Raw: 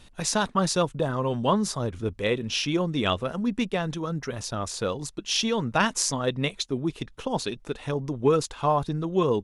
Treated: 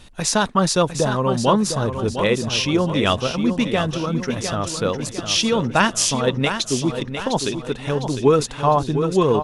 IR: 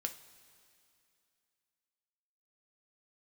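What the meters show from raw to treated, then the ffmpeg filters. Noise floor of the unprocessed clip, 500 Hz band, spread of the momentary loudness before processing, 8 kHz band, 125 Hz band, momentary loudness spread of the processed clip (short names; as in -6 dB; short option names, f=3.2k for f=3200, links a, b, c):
-51 dBFS, +6.5 dB, 7 LU, +7.0 dB, +6.5 dB, 6 LU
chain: -af "aecho=1:1:705|1410|2115|2820|3525:0.376|0.173|0.0795|0.0366|0.0168,volume=6dB"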